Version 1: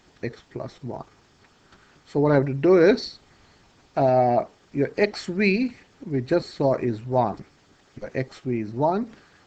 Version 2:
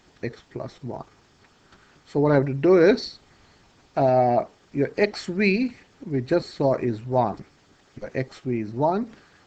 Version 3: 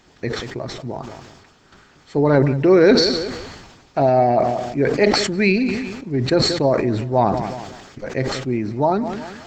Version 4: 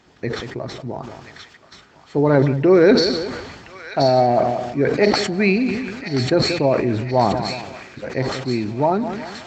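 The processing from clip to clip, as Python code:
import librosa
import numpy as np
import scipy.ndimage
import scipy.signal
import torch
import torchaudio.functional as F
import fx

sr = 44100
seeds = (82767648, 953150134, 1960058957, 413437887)

y1 = x
y2 = fx.echo_feedback(y1, sr, ms=184, feedback_pct=30, wet_db=-19)
y2 = fx.sustainer(y2, sr, db_per_s=43.0)
y2 = y2 * 10.0 ** (3.5 / 20.0)
y3 = scipy.signal.sosfilt(scipy.signal.butter(2, 53.0, 'highpass', fs=sr, output='sos'), y2)
y3 = fx.high_shelf(y3, sr, hz=5700.0, db=-7.5)
y3 = fx.echo_wet_highpass(y3, sr, ms=1029, feedback_pct=55, hz=1600.0, wet_db=-7)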